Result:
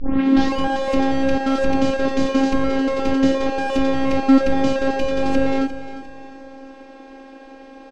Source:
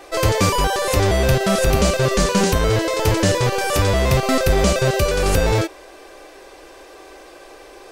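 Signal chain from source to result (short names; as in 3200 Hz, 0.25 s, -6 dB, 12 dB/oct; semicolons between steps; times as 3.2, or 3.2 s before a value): tape start at the beginning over 0.58 s; bell 280 Hz +12.5 dB 0.92 oct; in parallel at -9 dB: soft clip -17 dBFS, distortion -8 dB; on the sum: robotiser 269 Hz; air absorption 170 m; on a send: feedback echo 0.352 s, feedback 40%, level -13 dB; on the sum: gain -2.5 dB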